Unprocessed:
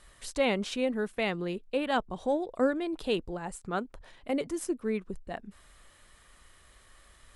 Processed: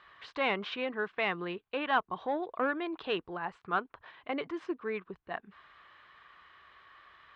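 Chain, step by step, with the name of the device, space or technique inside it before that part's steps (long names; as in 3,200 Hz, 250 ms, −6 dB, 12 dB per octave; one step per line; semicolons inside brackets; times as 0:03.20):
overdrive pedal into a guitar cabinet (mid-hump overdrive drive 10 dB, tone 4,000 Hz, clips at −14.5 dBFS; loudspeaker in its box 93–3,600 Hz, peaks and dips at 230 Hz −7 dB, 550 Hz −6 dB, 1,100 Hz +7 dB, 1,600 Hz +3 dB)
level −2.5 dB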